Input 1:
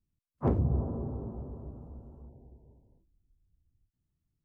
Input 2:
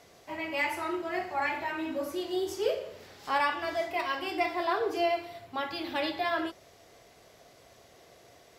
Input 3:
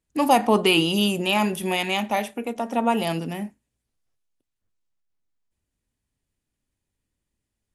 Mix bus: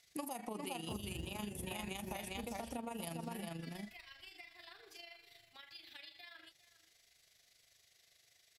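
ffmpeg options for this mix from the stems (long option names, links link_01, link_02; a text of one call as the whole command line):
ffmpeg -i stem1.wav -i stem2.wav -i stem3.wav -filter_complex "[0:a]acrusher=bits=6:mode=log:mix=0:aa=0.000001,adelay=450,volume=-1dB[link_01];[1:a]equalizer=frequency=250:width_type=o:width=1:gain=-11,equalizer=frequency=500:width_type=o:width=1:gain=-6,equalizer=frequency=1000:width_type=o:width=1:gain=-8,equalizer=frequency=2000:width_type=o:width=1:gain=8,equalizer=frequency=4000:width_type=o:width=1:gain=9,acompressor=threshold=-36dB:ratio=4,volume=-16.5dB,asplit=2[link_02][link_03];[link_03]volume=-16.5dB[link_04];[2:a]equalizer=frequency=150:width=1.9:gain=5.5,volume=-11dB,asplit=3[link_05][link_06][link_07];[link_06]volume=-5.5dB[link_08];[link_07]apad=whole_len=215818[link_09];[link_01][link_09]sidechaincompress=threshold=-32dB:ratio=8:attack=16:release=390[link_10];[link_02][link_05]amix=inputs=2:normalize=0,highshelf=frequency=8200:gain=11.5,alimiter=limit=-24dB:level=0:latency=1:release=174,volume=0dB[link_11];[link_04][link_08]amix=inputs=2:normalize=0,aecho=0:1:405:1[link_12];[link_10][link_11][link_12]amix=inputs=3:normalize=0,tremolo=f=25:d=0.571,equalizer=frequency=8600:width_type=o:width=1.2:gain=6.5,acompressor=threshold=-39dB:ratio=16" out.wav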